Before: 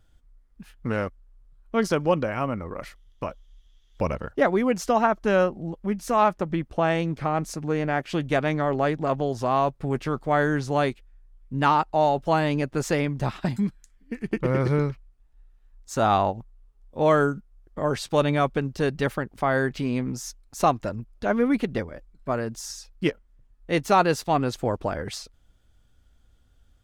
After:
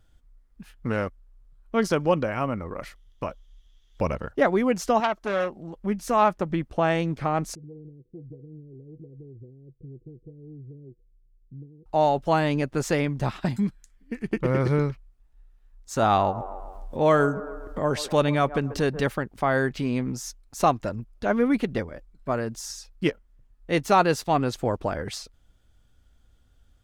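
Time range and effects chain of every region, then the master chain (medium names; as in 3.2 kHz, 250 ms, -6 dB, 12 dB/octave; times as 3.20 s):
5.00–5.76 s: bass shelf 300 Hz -9 dB + transformer saturation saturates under 1.7 kHz
7.55–11.86 s: compression 2.5:1, threshold -40 dBFS + rippled Chebyshev low-pass 500 Hz, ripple 9 dB + loudspeaker Doppler distortion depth 0.1 ms
16.03–19.01 s: feedback echo behind a band-pass 136 ms, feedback 33%, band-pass 670 Hz, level -15 dB + upward compressor, threshold -23 dBFS
whole clip: none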